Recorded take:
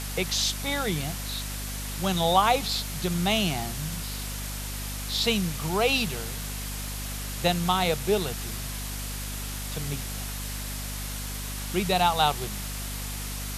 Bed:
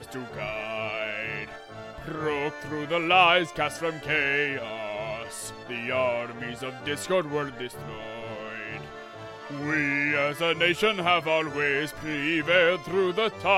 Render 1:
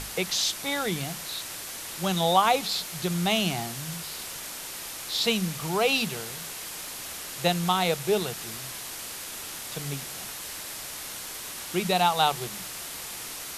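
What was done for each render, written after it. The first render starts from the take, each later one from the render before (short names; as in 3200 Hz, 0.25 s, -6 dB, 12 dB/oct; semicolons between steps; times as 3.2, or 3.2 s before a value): notches 50/100/150/200/250 Hz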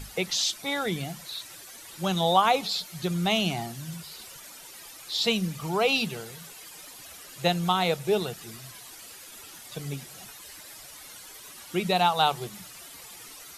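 denoiser 12 dB, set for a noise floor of -38 dBFS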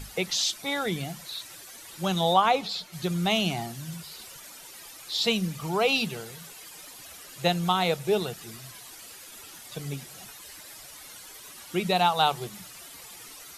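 2.33–2.92 LPF 5500 Hz -> 3200 Hz 6 dB/oct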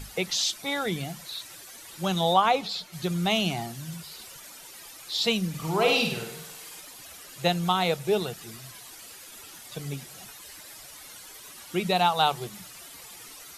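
5.49–6.8 flutter echo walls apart 8.6 m, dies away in 0.64 s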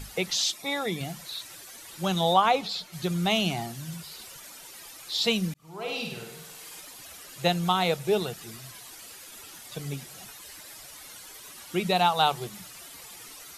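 0.52–1.01 notch comb 1500 Hz; 5.54–6.77 fade in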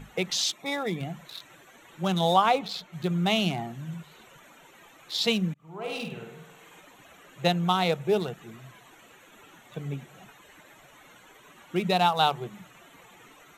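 Wiener smoothing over 9 samples; resonant low shelf 110 Hz -6 dB, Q 1.5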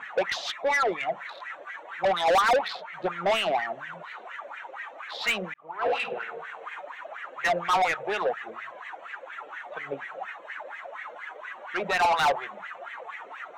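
wah 4.2 Hz 530–2000 Hz, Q 5.7; overdrive pedal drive 31 dB, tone 4100 Hz, clips at -14.5 dBFS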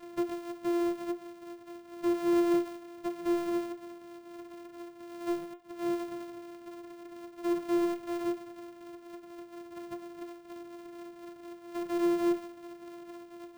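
sample sorter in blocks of 128 samples; resonator 350 Hz, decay 0.24 s, harmonics all, mix 90%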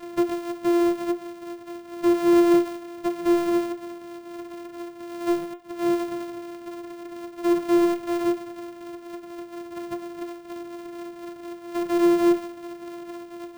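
gain +9 dB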